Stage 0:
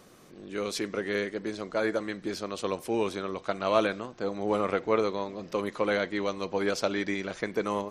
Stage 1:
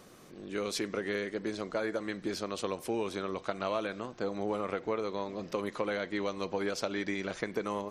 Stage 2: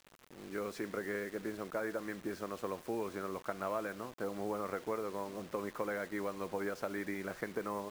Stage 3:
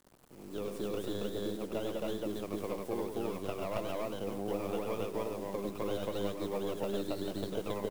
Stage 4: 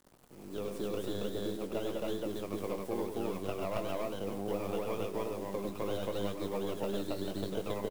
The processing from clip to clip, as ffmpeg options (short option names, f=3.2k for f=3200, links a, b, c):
-af "acompressor=threshold=-29dB:ratio=6"
-af "highshelf=f=2.4k:t=q:w=1.5:g=-10.5,acrusher=bits=7:mix=0:aa=0.000001,volume=-5dB"
-filter_complex "[0:a]acrossover=split=290|1100|7400[a][b][c][d];[c]aeval=exprs='abs(val(0))':c=same[e];[a][b][e][d]amix=inputs=4:normalize=0,aecho=1:1:99.13|274.1:0.501|1"
-filter_complex "[0:a]asplit=2[a][b];[b]adelay=21,volume=-11dB[c];[a][c]amix=inputs=2:normalize=0"